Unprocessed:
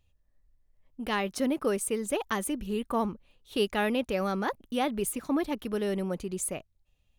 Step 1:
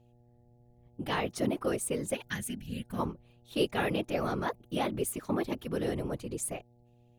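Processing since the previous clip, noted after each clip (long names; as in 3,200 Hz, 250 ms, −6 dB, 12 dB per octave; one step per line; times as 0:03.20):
random phases in short frames
gain on a spectral selection 0:02.14–0:02.99, 270–1,400 Hz −14 dB
hum with harmonics 120 Hz, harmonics 7, −60 dBFS −6 dB per octave
level −2.5 dB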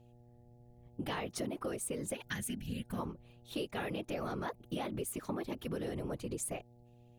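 in parallel at −2.5 dB: brickwall limiter −27.5 dBFS, peak gain reduction 11 dB
on the sum: downward compressor, threshold −32 dBFS, peak gain reduction 11 dB
level −3 dB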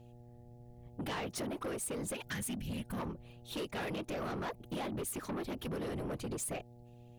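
soft clipping −39.5 dBFS, distortion −10 dB
level +5 dB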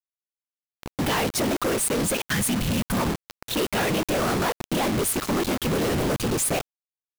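in parallel at +0.5 dB: brickwall limiter −43.5 dBFS, peak gain reduction 9 dB
on the sum: log-companded quantiser 2 bits
level +3 dB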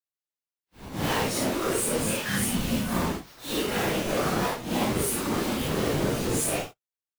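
random phases in long frames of 200 ms
level −2.5 dB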